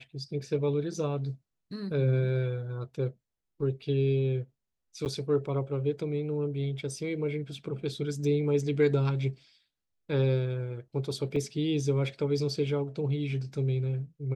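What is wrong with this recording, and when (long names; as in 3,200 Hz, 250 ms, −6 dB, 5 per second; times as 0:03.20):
0:05.05–0:05.06: drop-out 9.5 ms
0:11.36: drop-out 3.2 ms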